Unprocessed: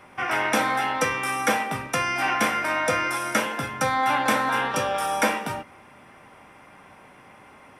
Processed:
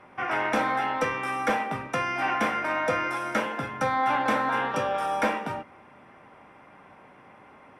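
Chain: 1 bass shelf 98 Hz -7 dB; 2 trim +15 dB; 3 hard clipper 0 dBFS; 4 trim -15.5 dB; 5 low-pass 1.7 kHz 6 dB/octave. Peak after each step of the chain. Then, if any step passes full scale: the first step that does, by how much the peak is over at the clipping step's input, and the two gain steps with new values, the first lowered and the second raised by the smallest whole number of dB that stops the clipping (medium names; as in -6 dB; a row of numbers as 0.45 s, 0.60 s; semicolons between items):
-7.5 dBFS, +7.5 dBFS, 0.0 dBFS, -15.5 dBFS, -15.5 dBFS; step 2, 7.5 dB; step 2 +7 dB, step 4 -7.5 dB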